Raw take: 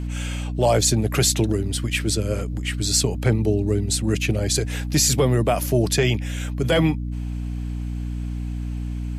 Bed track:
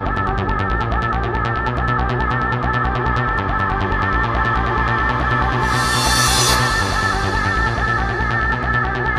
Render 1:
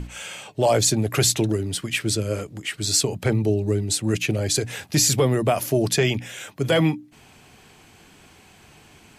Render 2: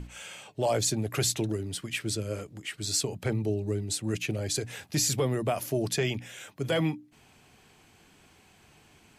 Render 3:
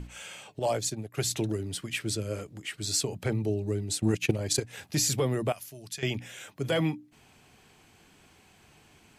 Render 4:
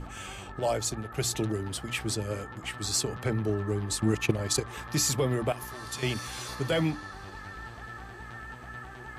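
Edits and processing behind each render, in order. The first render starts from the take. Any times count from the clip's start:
mains-hum notches 60/120/180/240/300 Hz
level −8 dB
0:00.59–0:01.31: expander for the loud parts 2.5 to 1, over −35 dBFS; 0:03.98–0:04.78: transient designer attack +10 dB, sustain −8 dB; 0:05.52–0:06.03: guitar amp tone stack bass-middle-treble 5-5-5
mix in bed track −24.5 dB

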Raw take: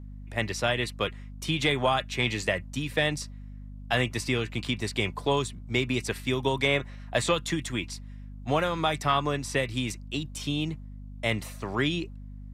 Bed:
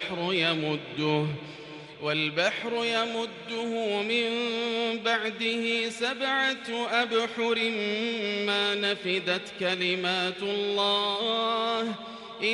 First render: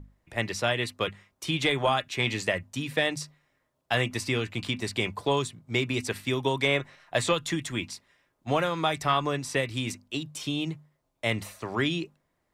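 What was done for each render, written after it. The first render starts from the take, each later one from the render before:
mains-hum notches 50/100/150/200/250 Hz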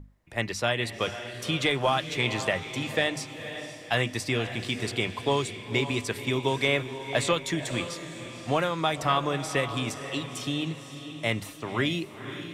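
feedback delay with all-pass diffusion 518 ms, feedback 45%, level −10 dB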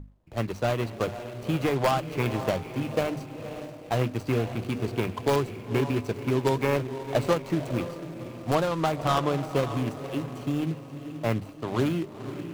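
running median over 25 samples
in parallel at −6 dB: wrap-around overflow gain 16.5 dB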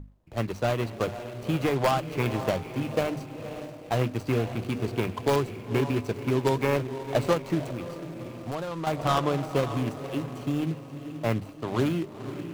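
0:07.70–0:08.87: downward compressor 3 to 1, threshold −31 dBFS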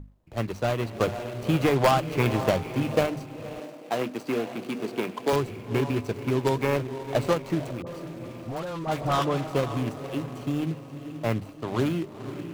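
0:00.95–0:03.06: clip gain +3.5 dB
0:03.60–0:05.33: high-pass filter 190 Hz 24 dB per octave
0:07.82–0:09.50: all-pass dispersion highs, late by 48 ms, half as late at 860 Hz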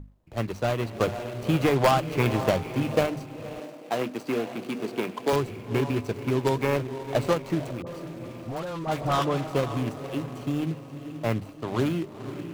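no processing that can be heard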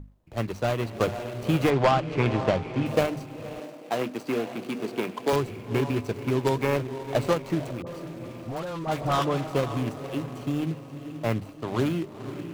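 0:01.70–0:02.86: high-frequency loss of the air 100 metres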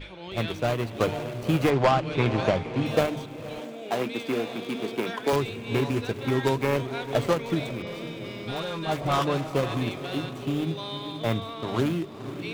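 mix in bed −11 dB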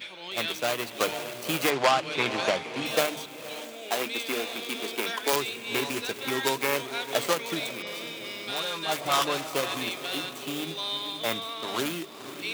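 high-pass filter 170 Hz 12 dB per octave
spectral tilt +3.5 dB per octave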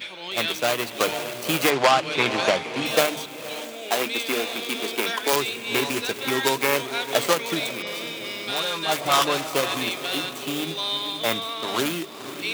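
level +5 dB
brickwall limiter −3 dBFS, peak gain reduction 2.5 dB

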